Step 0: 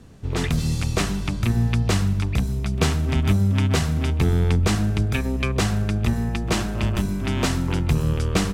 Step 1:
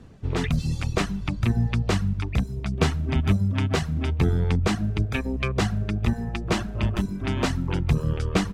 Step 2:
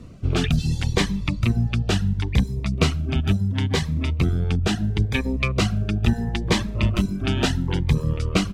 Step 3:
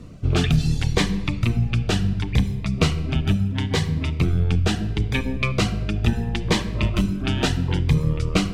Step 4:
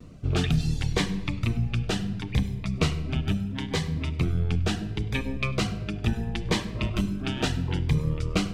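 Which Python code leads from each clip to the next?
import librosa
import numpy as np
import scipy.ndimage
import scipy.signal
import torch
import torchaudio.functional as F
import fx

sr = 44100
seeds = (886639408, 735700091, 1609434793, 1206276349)

y1 = fx.dereverb_blind(x, sr, rt60_s=1.0)
y1 = fx.lowpass(y1, sr, hz=3500.0, slope=6)
y2 = fx.rider(y1, sr, range_db=10, speed_s=0.5)
y2 = fx.dynamic_eq(y2, sr, hz=3300.0, q=1.1, threshold_db=-44.0, ratio=4.0, max_db=5)
y2 = fx.notch_cascade(y2, sr, direction='rising', hz=0.73)
y2 = F.gain(torch.from_numpy(y2), 2.5).numpy()
y3 = fx.rider(y2, sr, range_db=10, speed_s=2.0)
y3 = fx.room_shoebox(y3, sr, seeds[0], volume_m3=1000.0, walls='mixed', distance_m=0.46)
y4 = fx.vibrato(y3, sr, rate_hz=0.61, depth_cents=26.0)
y4 = fx.hum_notches(y4, sr, base_hz=50, count=2)
y4 = y4 + 10.0 ** (-22.5 / 20.0) * np.pad(y4, (int(100 * sr / 1000.0), 0))[:len(y4)]
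y4 = F.gain(torch.from_numpy(y4), -5.0).numpy()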